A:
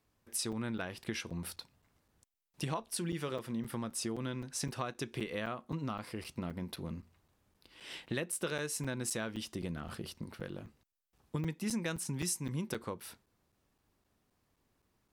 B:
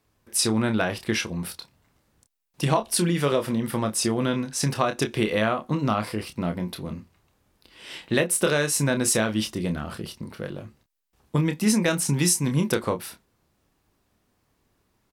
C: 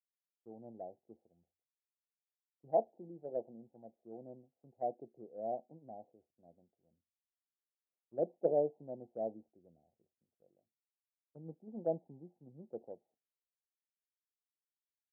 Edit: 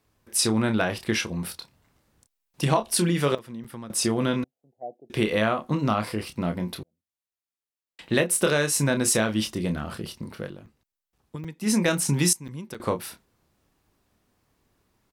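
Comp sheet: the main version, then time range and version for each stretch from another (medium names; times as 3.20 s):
B
3.35–3.90 s: from A
4.44–5.10 s: from C
6.83–7.99 s: from C
10.49–11.67 s: from A, crossfade 0.16 s
12.33–12.80 s: from A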